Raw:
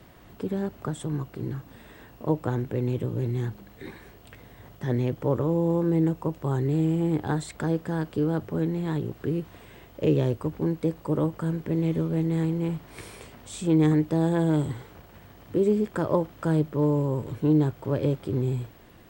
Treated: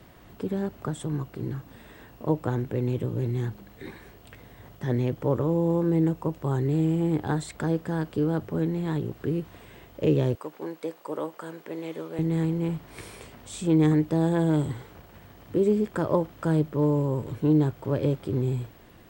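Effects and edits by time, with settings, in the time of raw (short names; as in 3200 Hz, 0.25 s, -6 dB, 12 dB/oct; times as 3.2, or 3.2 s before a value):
10.35–12.19 HPF 500 Hz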